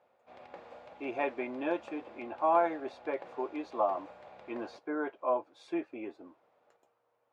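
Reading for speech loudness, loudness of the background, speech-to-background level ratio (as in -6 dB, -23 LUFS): -34.5 LUFS, -51.5 LUFS, 17.0 dB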